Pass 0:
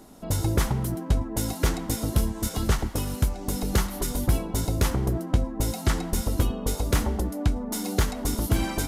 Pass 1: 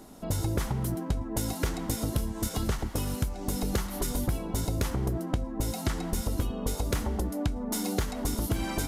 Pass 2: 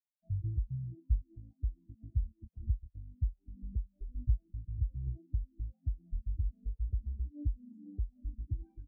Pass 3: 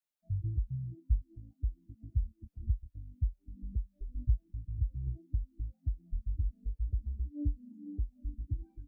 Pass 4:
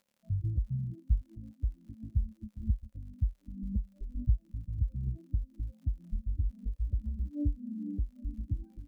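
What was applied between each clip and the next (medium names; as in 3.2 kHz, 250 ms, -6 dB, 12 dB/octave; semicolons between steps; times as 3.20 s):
compression, threshold -25 dBFS, peak gain reduction 9.5 dB
spectral contrast expander 4:1; trim -5 dB
feedback comb 290 Hz, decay 0.2 s, harmonics all, mix 60%; trim +8 dB
crackle 100 per s -59 dBFS; small resonant body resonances 210/540 Hz, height 15 dB, ringing for 70 ms; trim +1 dB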